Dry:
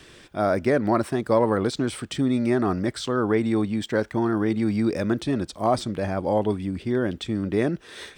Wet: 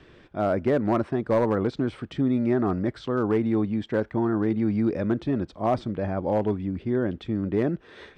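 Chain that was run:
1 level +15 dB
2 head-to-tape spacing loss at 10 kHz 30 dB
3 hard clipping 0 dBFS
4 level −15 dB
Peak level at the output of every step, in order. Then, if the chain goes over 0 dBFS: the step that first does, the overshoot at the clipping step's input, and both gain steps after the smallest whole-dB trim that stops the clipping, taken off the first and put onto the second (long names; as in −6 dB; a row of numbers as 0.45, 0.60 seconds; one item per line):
+6.5, +5.0, 0.0, −15.0 dBFS
step 1, 5.0 dB
step 1 +10 dB, step 4 −10 dB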